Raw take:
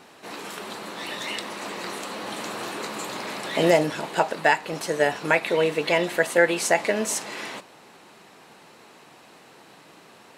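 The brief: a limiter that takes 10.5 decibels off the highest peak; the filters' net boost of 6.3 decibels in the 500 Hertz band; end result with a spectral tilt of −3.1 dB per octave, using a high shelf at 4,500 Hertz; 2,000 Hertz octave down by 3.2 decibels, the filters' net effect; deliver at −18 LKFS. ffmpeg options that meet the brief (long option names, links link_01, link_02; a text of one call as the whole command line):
ffmpeg -i in.wav -af "equalizer=frequency=500:width_type=o:gain=7.5,equalizer=frequency=2000:width_type=o:gain=-5,highshelf=frequency=4500:gain=4,volume=7dB,alimiter=limit=-5dB:level=0:latency=1" out.wav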